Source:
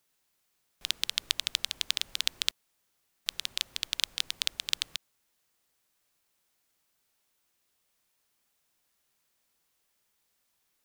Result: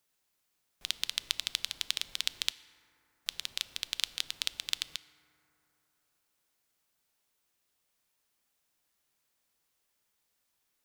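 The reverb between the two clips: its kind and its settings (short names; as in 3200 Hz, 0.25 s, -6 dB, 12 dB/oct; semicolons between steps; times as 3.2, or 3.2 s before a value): FDN reverb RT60 3.4 s, high-frequency decay 0.3×, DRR 14.5 dB; gain -3 dB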